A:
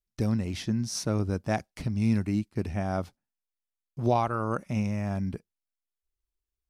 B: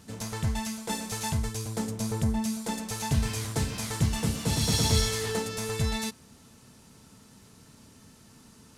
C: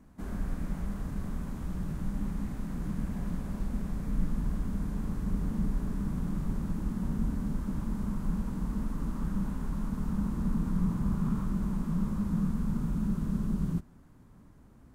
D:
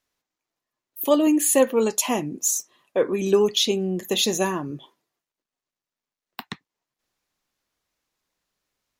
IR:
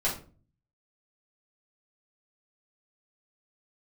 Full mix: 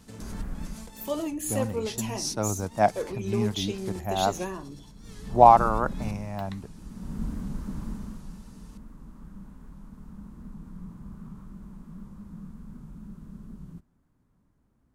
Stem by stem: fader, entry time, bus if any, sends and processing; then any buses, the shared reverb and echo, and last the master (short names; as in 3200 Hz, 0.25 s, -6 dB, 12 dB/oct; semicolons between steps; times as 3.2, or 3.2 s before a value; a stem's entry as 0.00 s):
-4.0 dB, 1.30 s, no send, bell 840 Hz +12.5 dB 1.1 oct; three-band expander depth 70%
-11.0 dB, 0.00 s, no send, negative-ratio compressor -39 dBFS, ratio -1
7.89 s -1.5 dB -> 8.4 s -13 dB, 0.00 s, no send, auto duck -17 dB, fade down 0.30 s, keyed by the fourth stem
-13.0 dB, 0.00 s, send -15 dB, dry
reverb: on, RT60 0.40 s, pre-delay 5 ms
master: record warp 78 rpm, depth 100 cents